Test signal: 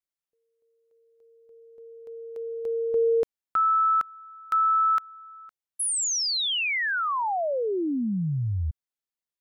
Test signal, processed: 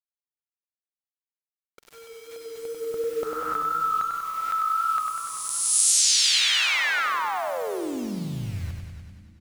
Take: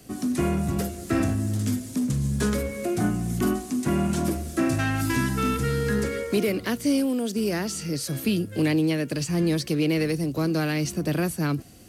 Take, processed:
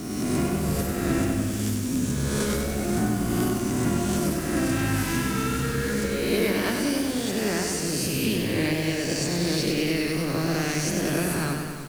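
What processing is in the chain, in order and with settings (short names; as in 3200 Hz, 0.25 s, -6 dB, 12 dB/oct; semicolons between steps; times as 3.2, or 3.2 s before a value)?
spectral swells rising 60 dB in 1.60 s; bit-crush 7-bit; harmonic-percussive split harmonic -5 dB; on a send: frequency-shifting echo 0.305 s, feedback 32%, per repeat -150 Hz, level -17 dB; on the sum: warbling echo 97 ms, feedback 69%, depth 72 cents, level -5 dB; gain -1 dB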